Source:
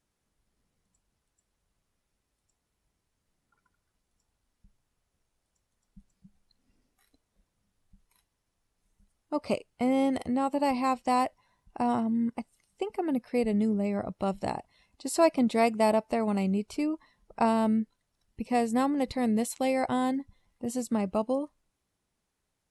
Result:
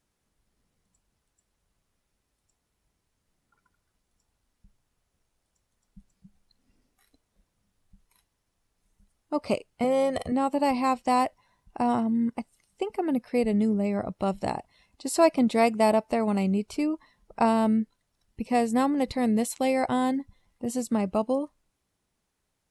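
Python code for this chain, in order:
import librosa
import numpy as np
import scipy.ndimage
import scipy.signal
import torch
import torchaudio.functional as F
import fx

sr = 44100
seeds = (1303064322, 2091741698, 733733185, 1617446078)

y = fx.comb(x, sr, ms=1.7, depth=0.71, at=(9.84, 10.32))
y = F.gain(torch.from_numpy(y), 2.5).numpy()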